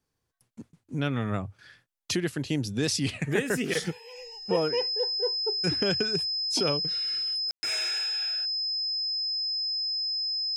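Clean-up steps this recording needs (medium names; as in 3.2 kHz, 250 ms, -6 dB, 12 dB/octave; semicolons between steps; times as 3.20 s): band-stop 5.1 kHz, Q 30; room tone fill 7.51–7.63 s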